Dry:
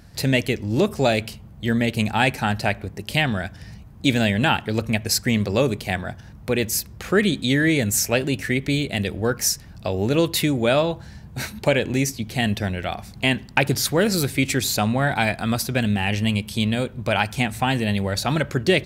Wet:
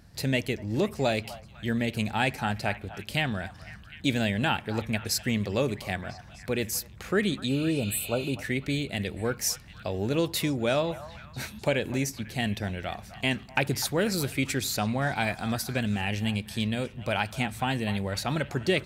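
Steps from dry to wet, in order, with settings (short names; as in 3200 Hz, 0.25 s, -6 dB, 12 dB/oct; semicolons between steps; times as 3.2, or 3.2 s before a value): spectral repair 7.51–8.31, 1500–7600 Hz after; delay with a stepping band-pass 0.25 s, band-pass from 960 Hz, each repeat 0.7 oct, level -11.5 dB; gain -7 dB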